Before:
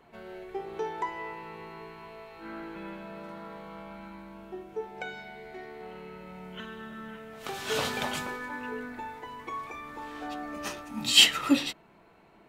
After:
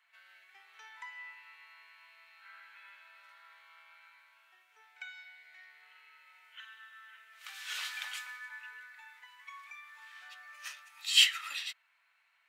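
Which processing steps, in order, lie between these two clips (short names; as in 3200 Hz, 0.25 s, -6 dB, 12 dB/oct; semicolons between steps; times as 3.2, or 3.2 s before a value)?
ladder high-pass 1400 Hz, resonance 30%; pre-echo 53 ms -19.5 dB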